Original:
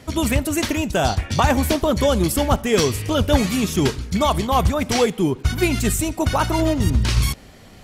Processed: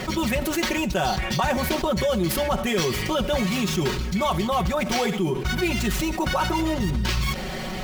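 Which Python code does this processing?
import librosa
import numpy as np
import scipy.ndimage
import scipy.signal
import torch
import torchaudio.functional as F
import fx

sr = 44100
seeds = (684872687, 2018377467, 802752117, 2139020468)

y = scipy.ndimage.median_filter(x, 5, mode='constant')
y = fx.low_shelf(y, sr, hz=480.0, db=-3.5)
y = y + 0.92 * np.pad(y, (int(5.4 * sr / 1000.0), 0))[:len(y)]
y = fx.room_flutter(y, sr, wall_m=11.5, rt60_s=0.27, at=(4.84, 5.51))
y = fx.env_flatten(y, sr, amount_pct=70)
y = y * 10.0 ** (-9.0 / 20.0)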